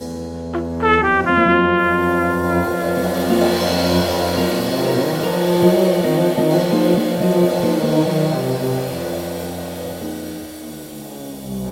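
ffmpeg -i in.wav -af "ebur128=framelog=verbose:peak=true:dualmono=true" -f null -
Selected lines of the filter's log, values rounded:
Integrated loudness:
  I:         -14.4 LUFS
  Threshold: -24.9 LUFS
Loudness range:
  LRA:         6.1 LU
  Threshold: -34.5 LUFS
  LRA low:   -19.3 LUFS
  LRA high:  -13.1 LUFS
True peak:
  Peak:       -1.3 dBFS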